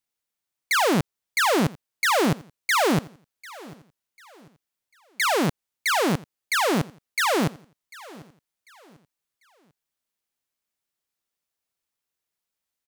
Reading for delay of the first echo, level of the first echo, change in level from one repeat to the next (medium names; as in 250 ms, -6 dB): 745 ms, -21.0 dB, -9.5 dB